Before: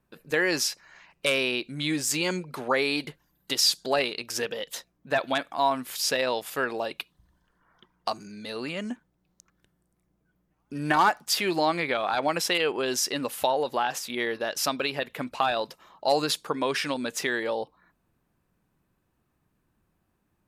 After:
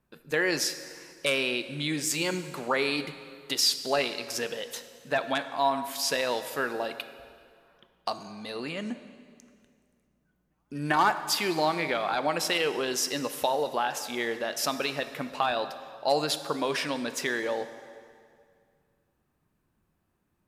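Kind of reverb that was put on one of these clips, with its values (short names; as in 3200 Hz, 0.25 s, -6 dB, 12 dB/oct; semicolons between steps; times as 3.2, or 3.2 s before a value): plate-style reverb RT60 2.2 s, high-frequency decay 0.85×, DRR 10 dB; gain -2 dB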